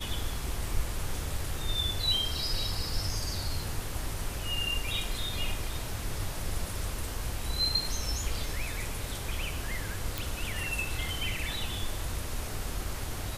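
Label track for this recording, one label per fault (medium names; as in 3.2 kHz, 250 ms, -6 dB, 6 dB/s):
10.180000	10.180000	pop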